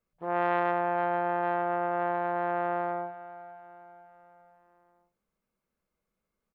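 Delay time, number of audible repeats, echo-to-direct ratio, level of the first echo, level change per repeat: 497 ms, 4, -15.0 dB, -16.0 dB, -6.0 dB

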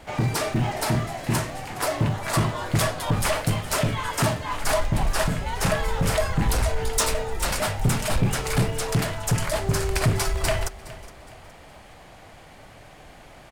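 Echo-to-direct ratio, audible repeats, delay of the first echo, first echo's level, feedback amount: -17.5 dB, 3, 416 ms, -18.0 dB, 38%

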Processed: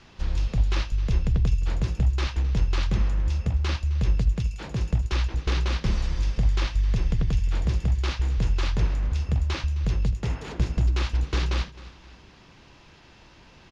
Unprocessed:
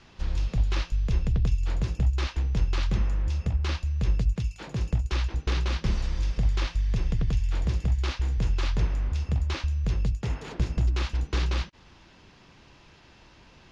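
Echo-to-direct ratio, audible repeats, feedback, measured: -17.0 dB, 3, 38%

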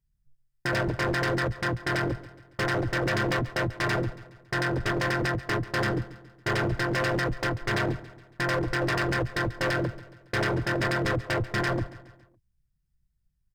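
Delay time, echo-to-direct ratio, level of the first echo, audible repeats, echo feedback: 139 ms, -16.0 dB, -17.0 dB, 3, 49%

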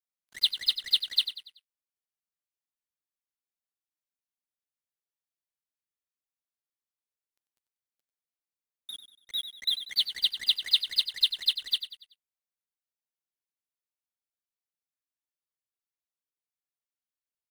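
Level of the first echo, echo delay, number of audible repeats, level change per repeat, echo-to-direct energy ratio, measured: -11.0 dB, 95 ms, 4, -8.0 dB, -10.0 dB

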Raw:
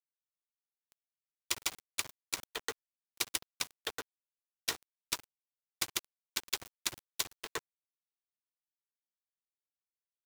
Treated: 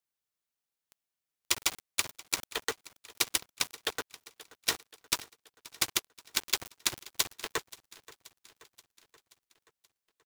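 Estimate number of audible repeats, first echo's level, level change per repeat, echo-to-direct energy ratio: 4, -20.0 dB, -4.5 dB, -18.0 dB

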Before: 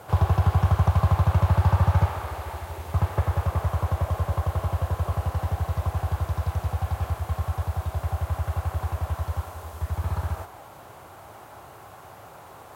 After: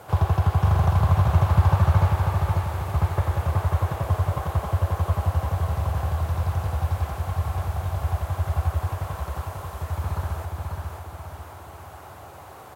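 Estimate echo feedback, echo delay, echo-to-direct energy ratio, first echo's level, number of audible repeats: 45%, 542 ms, -3.0 dB, -4.0 dB, 4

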